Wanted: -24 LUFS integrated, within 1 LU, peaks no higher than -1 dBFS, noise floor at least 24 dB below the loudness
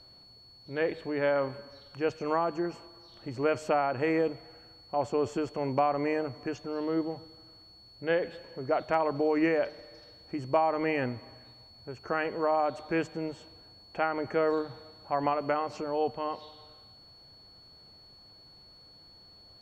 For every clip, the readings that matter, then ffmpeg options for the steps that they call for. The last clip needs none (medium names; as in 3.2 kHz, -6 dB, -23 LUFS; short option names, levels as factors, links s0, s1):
steady tone 4.4 kHz; tone level -53 dBFS; loudness -30.5 LUFS; peak level -13.5 dBFS; loudness target -24.0 LUFS
-> -af "bandreject=f=4400:w=30"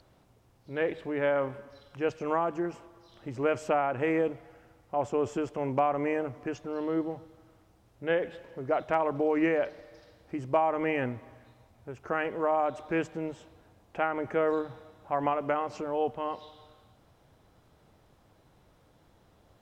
steady tone not found; loudness -30.5 LUFS; peak level -13.5 dBFS; loudness target -24.0 LUFS
-> -af "volume=2.11"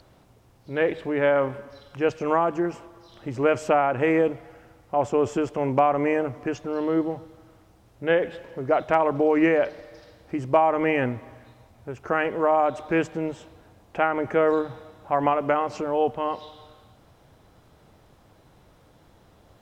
loudness -24.0 LUFS; peak level -7.0 dBFS; noise floor -57 dBFS